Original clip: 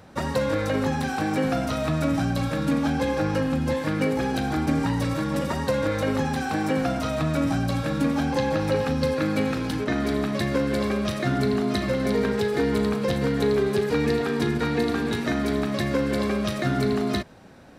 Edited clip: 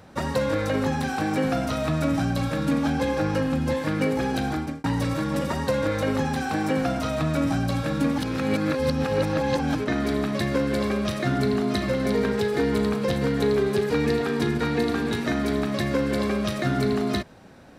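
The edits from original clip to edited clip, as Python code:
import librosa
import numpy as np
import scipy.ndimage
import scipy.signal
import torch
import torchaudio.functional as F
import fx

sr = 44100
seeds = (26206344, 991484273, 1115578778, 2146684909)

y = fx.edit(x, sr, fx.fade_out_span(start_s=4.48, length_s=0.36),
    fx.reverse_span(start_s=8.18, length_s=1.57), tone=tone)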